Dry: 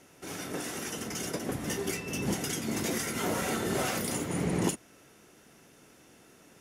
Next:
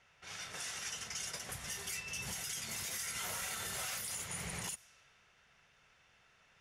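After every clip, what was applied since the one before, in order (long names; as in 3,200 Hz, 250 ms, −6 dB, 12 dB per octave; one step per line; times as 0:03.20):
low-pass that shuts in the quiet parts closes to 2,600 Hz, open at −28 dBFS
guitar amp tone stack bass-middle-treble 10-0-10
brickwall limiter −32 dBFS, peak gain reduction 10 dB
level +1.5 dB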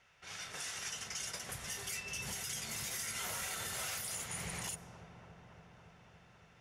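delay with a low-pass on its return 281 ms, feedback 80%, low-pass 920 Hz, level −8.5 dB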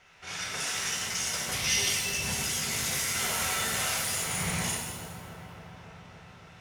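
gain on a spectral selection 0:01.53–0:01.89, 2,000–6,400 Hz +9 dB
high-shelf EQ 11,000 Hz −4.5 dB
reverb with rising layers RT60 1.2 s, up +7 semitones, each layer −8 dB, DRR −1 dB
level +7.5 dB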